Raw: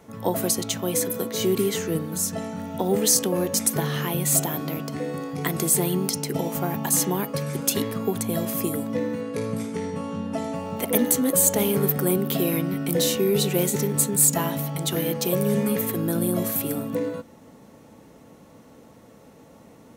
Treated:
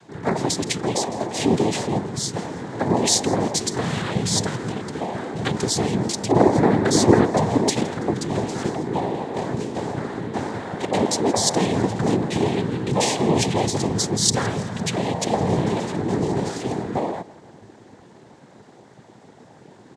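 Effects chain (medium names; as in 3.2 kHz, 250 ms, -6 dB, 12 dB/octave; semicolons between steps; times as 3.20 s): 6.28–7.69 s: peaking EQ 370 Hz +12 dB 2 oct; noise-vocoded speech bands 6; feedback delay 165 ms, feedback 51%, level -21 dB; trim +2.5 dB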